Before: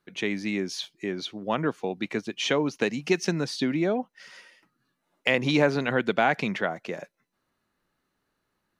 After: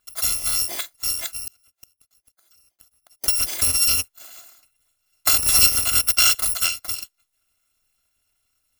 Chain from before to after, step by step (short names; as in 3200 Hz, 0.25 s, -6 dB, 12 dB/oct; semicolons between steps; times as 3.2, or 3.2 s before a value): FFT order left unsorted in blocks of 256 samples; 1.41–3.24 flipped gate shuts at -23 dBFS, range -40 dB; gain +6 dB